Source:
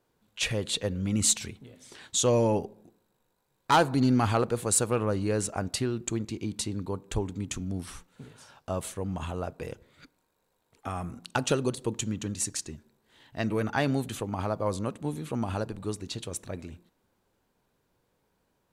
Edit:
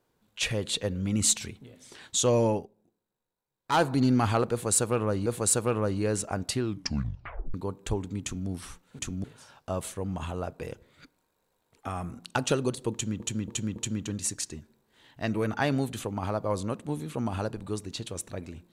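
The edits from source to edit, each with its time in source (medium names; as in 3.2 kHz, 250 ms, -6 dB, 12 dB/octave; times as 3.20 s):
2.49–3.83 s: dip -13.5 dB, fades 0.19 s
4.51–5.26 s: loop, 2 plays
5.87 s: tape stop 0.92 s
7.48–7.73 s: copy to 8.24 s
11.92–12.20 s: loop, 4 plays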